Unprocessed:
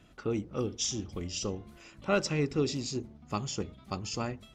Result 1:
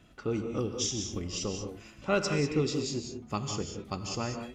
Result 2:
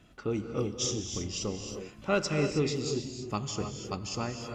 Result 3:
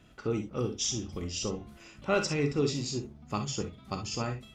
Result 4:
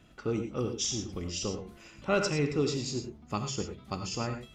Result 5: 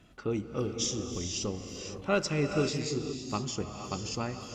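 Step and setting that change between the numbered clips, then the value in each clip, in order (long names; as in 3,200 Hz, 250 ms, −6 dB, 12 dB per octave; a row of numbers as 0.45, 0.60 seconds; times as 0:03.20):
reverb whose tail is shaped and stops, gate: 220, 340, 80, 130, 530 milliseconds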